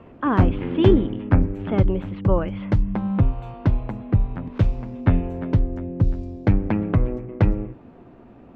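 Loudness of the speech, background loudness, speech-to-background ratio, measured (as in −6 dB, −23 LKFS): −24.5 LKFS, −23.5 LKFS, −1.0 dB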